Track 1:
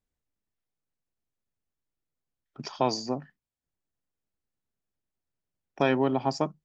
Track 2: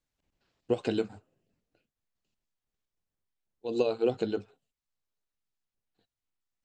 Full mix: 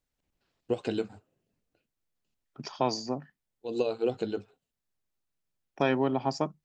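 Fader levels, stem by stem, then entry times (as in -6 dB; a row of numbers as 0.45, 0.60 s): -2.0, -1.5 dB; 0.00, 0.00 s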